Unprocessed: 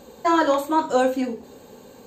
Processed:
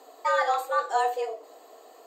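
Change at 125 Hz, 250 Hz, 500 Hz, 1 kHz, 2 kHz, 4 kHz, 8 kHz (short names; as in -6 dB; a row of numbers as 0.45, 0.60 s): n/a, under -30 dB, -7.0 dB, -3.0 dB, -1.5 dB, -5.5 dB, -5.5 dB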